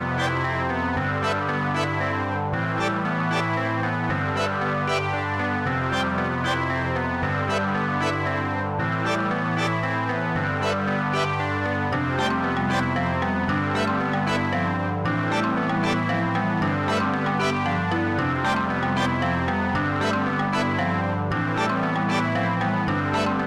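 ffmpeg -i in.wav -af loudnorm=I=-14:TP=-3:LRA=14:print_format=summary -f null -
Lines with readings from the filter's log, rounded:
Input Integrated:    -23.7 LUFS
Input True Peak:     -16.8 dBTP
Input LRA:             1.0 LU
Input Threshold:     -33.7 LUFS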